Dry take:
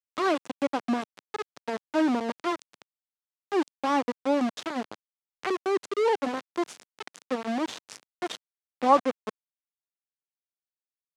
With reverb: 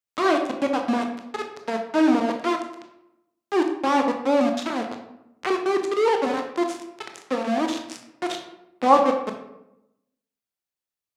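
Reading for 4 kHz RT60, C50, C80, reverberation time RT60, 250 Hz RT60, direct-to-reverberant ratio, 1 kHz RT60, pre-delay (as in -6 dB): 0.50 s, 6.5 dB, 9.5 dB, 0.85 s, 1.0 s, 3.5 dB, 0.80 s, 18 ms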